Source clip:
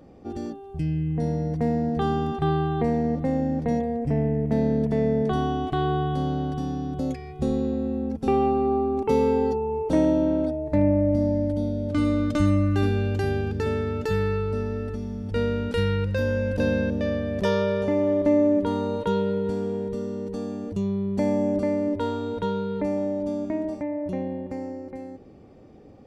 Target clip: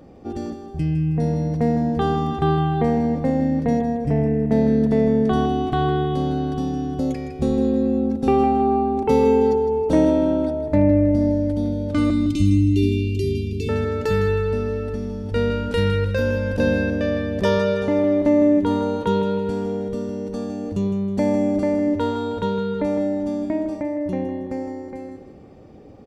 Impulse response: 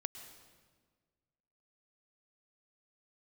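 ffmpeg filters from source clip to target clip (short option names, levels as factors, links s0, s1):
-filter_complex "[0:a]asettb=1/sr,asplit=3[s0][s1][s2];[s0]atrim=end=12.104[s3];[s1]atrim=start=12.1:end=13.69,asetpts=PTS-STARTPTS,afade=t=in:d=0.004:c=qsin,afade=t=out:st=1.586:d=0.004:c=qsin,asuperstop=centerf=970:order=20:qfactor=0.53[s4];[s2]atrim=start=13.686[s5];[s3][s4]acrossfade=d=0.004:c1=hsin:c2=qsin[s6];[s6][s5]acrossfade=d=0.004:c1=qsin:c2=hsin,asplit=2[s7][s8];[s8]aecho=0:1:159|318|477|636:0.316|0.123|0.0481|0.0188[s9];[s7][s9]amix=inputs=2:normalize=0,volume=1.58"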